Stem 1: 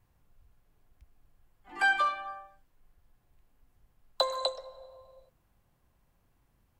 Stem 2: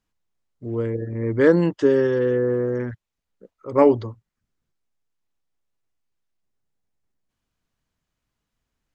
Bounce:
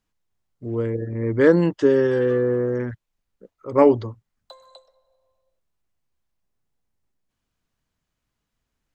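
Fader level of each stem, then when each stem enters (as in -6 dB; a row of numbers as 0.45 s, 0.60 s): -17.5 dB, +0.5 dB; 0.30 s, 0.00 s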